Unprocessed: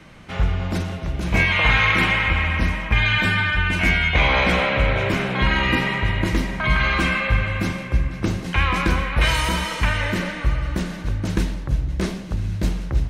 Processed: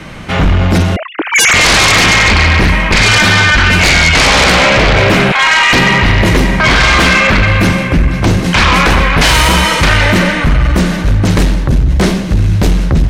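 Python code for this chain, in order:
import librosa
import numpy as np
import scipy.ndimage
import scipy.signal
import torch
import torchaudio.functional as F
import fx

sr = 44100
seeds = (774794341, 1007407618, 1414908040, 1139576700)

y = fx.sine_speech(x, sr, at=(0.96, 1.54))
y = fx.highpass(y, sr, hz=760.0, slope=24, at=(5.32, 5.73))
y = fx.fold_sine(y, sr, drive_db=13, ceiling_db=-4.5)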